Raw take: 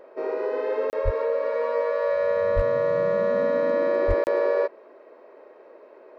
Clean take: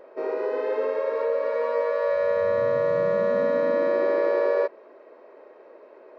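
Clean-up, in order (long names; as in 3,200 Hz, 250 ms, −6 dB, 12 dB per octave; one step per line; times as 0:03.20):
clipped peaks rebuilt −12.5 dBFS
0:01.04–0:01.16: high-pass filter 140 Hz 24 dB per octave
0:02.55–0:02.67: high-pass filter 140 Hz 24 dB per octave
0:04.07–0:04.19: high-pass filter 140 Hz 24 dB per octave
repair the gap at 0:00.90/0:04.24, 29 ms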